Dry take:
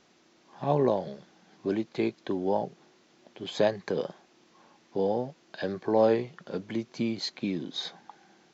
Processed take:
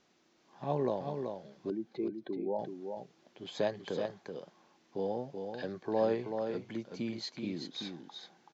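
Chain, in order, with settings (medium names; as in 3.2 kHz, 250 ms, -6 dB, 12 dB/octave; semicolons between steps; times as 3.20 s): 1.70–2.59 s: spectral contrast enhancement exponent 1.8; delay 380 ms -6 dB; trim -7.5 dB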